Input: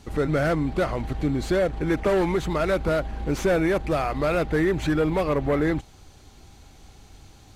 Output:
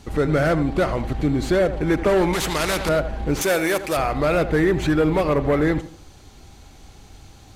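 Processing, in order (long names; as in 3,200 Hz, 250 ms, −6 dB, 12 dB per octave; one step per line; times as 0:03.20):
0:03.41–0:03.97: RIAA equalisation recording
tape delay 82 ms, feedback 41%, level −11 dB, low-pass 1,700 Hz
0:02.33–0:02.89: every bin compressed towards the loudest bin 2 to 1
level +3.5 dB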